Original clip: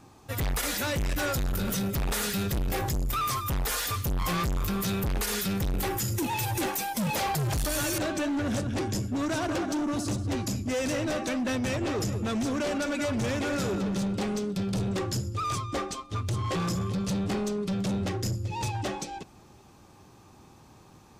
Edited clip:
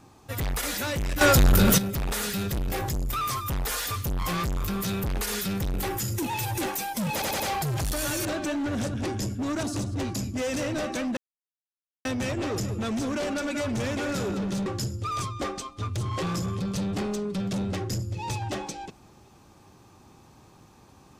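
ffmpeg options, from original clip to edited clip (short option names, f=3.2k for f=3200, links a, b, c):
-filter_complex "[0:a]asplit=9[a][b][c][d][e][f][g][h][i];[a]atrim=end=1.212[j];[b]atrim=start=1.208:end=1.782,asetpts=PTS-STARTPTS,volume=11dB[k];[c]atrim=start=1.778:end=7.222[l];[d]atrim=start=7.128:end=7.222[m];[e]atrim=start=7.128:end=7.222[n];[f]atrim=start=7.128:end=9.362[o];[g]atrim=start=9.948:end=11.49,asetpts=PTS-STARTPTS,afade=t=out:st=1.538:d=0.004:c=hsin,apad=pad_dur=0.88[p];[h]atrim=start=11.49:end=14.102,asetpts=PTS-STARTPTS,afade=t=in:d=0.004:c=hsin[q];[i]atrim=start=14.988[r];[j][k]acrossfade=d=0.004:c1=hsin:c2=hsin[s];[s][l]acrossfade=d=0.004:c1=hsin:c2=hsin[t];[t][m]acrossfade=d=0.004:c1=hsin:c2=hsin[u];[u][n]acrossfade=d=0.004:c1=hsin:c2=hsin[v];[v][o]acrossfade=d=0.004:c1=hsin:c2=hsin[w];[p][q]concat=n=2:v=0:a=1[x];[w][x]acrossfade=d=0.004:c1=hsin:c2=hsin[y];[y][r]acrossfade=d=0.004:c1=hsin:c2=hsin"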